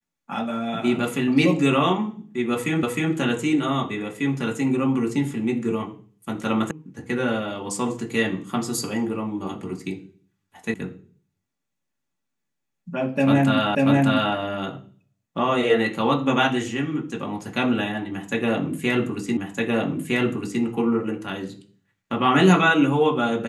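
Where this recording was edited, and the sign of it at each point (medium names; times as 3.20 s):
2.83 s: repeat of the last 0.31 s
6.71 s: sound stops dead
10.74 s: sound stops dead
13.75 s: repeat of the last 0.59 s
19.37 s: repeat of the last 1.26 s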